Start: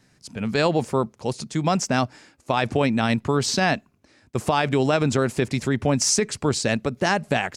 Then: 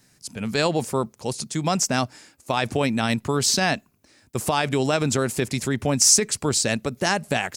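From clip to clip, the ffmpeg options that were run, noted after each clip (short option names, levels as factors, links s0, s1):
-af "aemphasis=mode=production:type=50fm,volume=0.841"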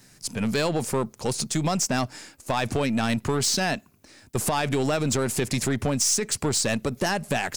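-af "aeval=exprs='if(lt(val(0),0),0.708*val(0),val(0))':c=same,acompressor=threshold=0.0501:ratio=3,asoftclip=type=tanh:threshold=0.0668,volume=2.11"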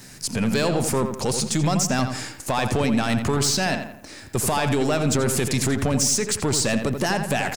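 -filter_complex "[0:a]asplit=2[s0][s1];[s1]acompressor=threshold=0.02:ratio=6,volume=0.75[s2];[s0][s2]amix=inputs=2:normalize=0,alimiter=limit=0.0891:level=0:latency=1:release=30,asplit=2[s3][s4];[s4]adelay=85,lowpass=f=2900:p=1,volume=0.447,asplit=2[s5][s6];[s6]adelay=85,lowpass=f=2900:p=1,volume=0.44,asplit=2[s7][s8];[s8]adelay=85,lowpass=f=2900:p=1,volume=0.44,asplit=2[s9][s10];[s10]adelay=85,lowpass=f=2900:p=1,volume=0.44,asplit=2[s11][s12];[s12]adelay=85,lowpass=f=2900:p=1,volume=0.44[s13];[s3][s5][s7][s9][s11][s13]amix=inputs=6:normalize=0,volume=1.78"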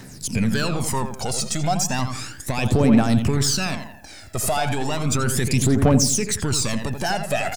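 -af "aphaser=in_gain=1:out_gain=1:delay=1.6:decay=0.66:speed=0.34:type=triangular,volume=0.75"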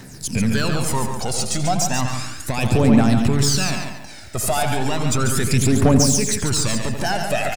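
-af "aecho=1:1:141|282|423|564:0.473|0.137|0.0398|0.0115,volume=1.12"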